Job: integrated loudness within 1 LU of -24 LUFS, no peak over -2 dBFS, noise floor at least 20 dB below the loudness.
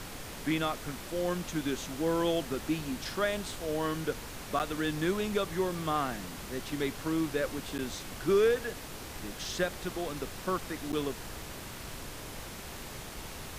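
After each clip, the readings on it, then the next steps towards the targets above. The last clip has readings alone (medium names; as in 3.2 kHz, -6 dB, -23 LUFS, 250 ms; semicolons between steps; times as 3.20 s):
dropouts 3; longest dropout 9.0 ms; noise floor -43 dBFS; noise floor target -54 dBFS; loudness -33.5 LUFS; peak level -17.0 dBFS; loudness target -24.0 LUFS
-> interpolate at 4.59/7.78/10.92 s, 9 ms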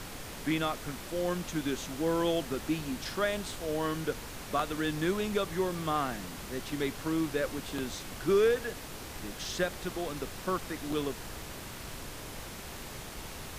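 dropouts 0; noise floor -43 dBFS; noise floor target -54 dBFS
-> noise print and reduce 11 dB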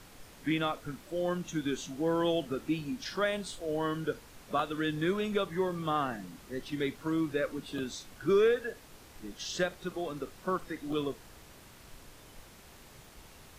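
noise floor -54 dBFS; loudness -33.0 LUFS; peak level -17.0 dBFS; loudness target -24.0 LUFS
-> trim +9 dB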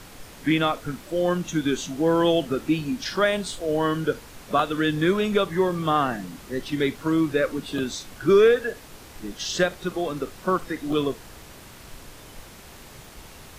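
loudness -24.0 LUFS; peak level -8.0 dBFS; noise floor -45 dBFS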